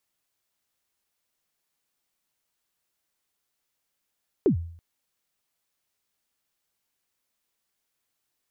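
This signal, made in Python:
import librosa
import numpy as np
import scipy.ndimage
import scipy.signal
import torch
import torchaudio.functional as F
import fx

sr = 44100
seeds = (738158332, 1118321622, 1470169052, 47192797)

y = fx.drum_kick(sr, seeds[0], length_s=0.33, level_db=-14.0, start_hz=450.0, end_hz=84.0, sweep_ms=102.0, decay_s=0.58, click=False)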